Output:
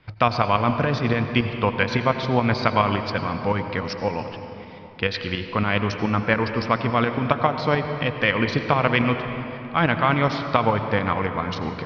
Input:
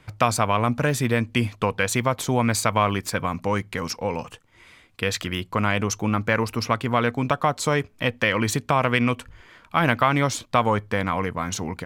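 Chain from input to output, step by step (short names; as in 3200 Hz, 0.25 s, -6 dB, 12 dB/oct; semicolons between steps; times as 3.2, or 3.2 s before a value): steep low-pass 5200 Hz 72 dB/oct; tremolo saw up 7.1 Hz, depth 60%; reverb RT60 3.4 s, pre-delay 78 ms, DRR 7 dB; gain +3 dB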